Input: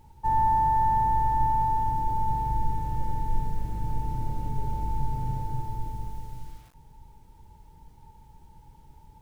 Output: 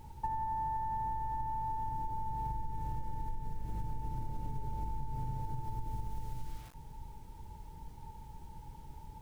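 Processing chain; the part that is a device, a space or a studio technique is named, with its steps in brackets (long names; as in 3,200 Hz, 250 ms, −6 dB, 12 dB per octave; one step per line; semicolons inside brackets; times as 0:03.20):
serial compression, peaks first (downward compressor, threshold −31 dBFS, peak gain reduction 12.5 dB; downward compressor 2.5 to 1, threshold −38 dBFS, peak gain reduction 6.5 dB)
level +3 dB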